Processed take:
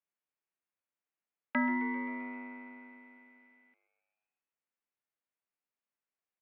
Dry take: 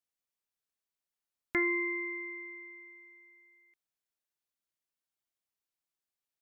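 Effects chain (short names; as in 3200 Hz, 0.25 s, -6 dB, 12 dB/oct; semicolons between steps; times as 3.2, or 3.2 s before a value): spectral whitening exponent 0.3; mistuned SSB -99 Hz 270–2800 Hz; frequency-shifting echo 0.131 s, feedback 64%, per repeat +100 Hz, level -18 dB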